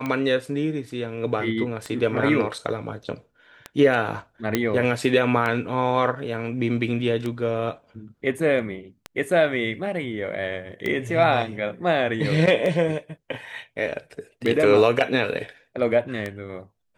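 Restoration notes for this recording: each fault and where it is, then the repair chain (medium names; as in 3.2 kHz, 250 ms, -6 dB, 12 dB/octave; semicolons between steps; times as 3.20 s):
tick 33 1/3 rpm -15 dBFS
4.55 s: pop -6 dBFS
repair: de-click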